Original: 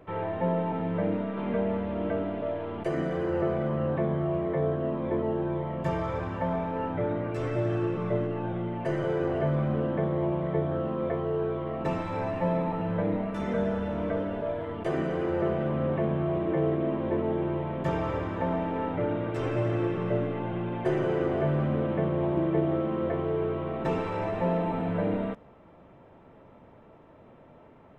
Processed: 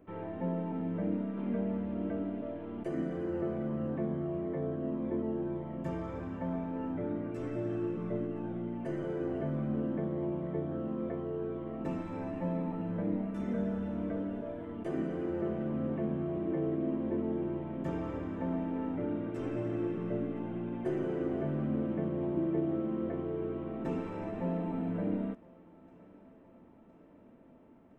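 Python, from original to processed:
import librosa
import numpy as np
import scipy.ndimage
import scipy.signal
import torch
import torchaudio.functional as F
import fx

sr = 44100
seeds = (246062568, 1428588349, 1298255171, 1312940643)

y = fx.graphic_eq(x, sr, hz=(125, 250, 500, 1000, 2000, 4000), db=(-6, 9, -4, -5, -3, -7))
y = fx.echo_thinned(y, sr, ms=1013, feedback_pct=70, hz=270.0, wet_db=-23)
y = y * 10.0 ** (-6.5 / 20.0)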